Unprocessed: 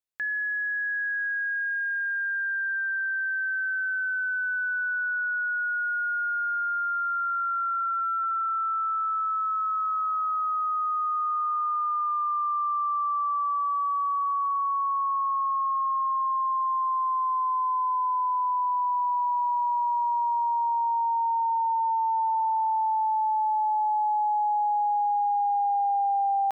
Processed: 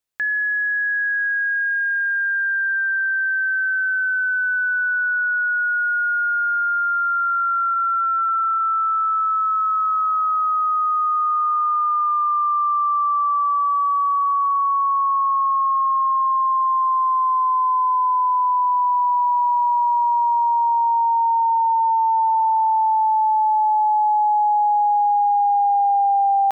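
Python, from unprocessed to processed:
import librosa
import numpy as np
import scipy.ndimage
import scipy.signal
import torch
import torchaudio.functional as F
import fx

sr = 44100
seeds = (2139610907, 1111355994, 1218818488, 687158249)

y = fx.steep_highpass(x, sr, hz=850.0, slope=72, at=(7.74, 8.58), fade=0.02)
y = y * librosa.db_to_amplitude(7.5)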